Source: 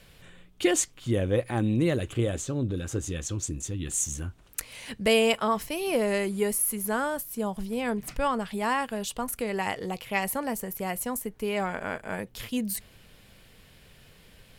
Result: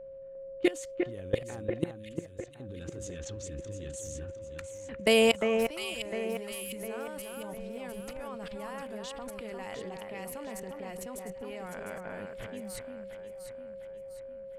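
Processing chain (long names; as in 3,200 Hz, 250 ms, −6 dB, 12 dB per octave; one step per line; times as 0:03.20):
low-pass that shuts in the quiet parts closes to 730 Hz, open at −25 dBFS
output level in coarse steps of 22 dB
steady tone 540 Hz −44 dBFS
0:01.91–0:02.60: guitar amp tone stack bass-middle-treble 6-0-2
on a send: delay that swaps between a low-pass and a high-pass 352 ms, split 2,300 Hz, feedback 67%, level −5 dB
on the sum: level +1 dB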